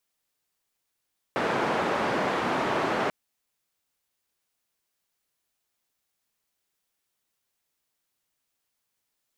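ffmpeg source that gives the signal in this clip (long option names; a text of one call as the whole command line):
ffmpeg -f lavfi -i "anoisesrc=color=white:duration=1.74:sample_rate=44100:seed=1,highpass=frequency=180,lowpass=frequency=1100,volume=-8.4dB" out.wav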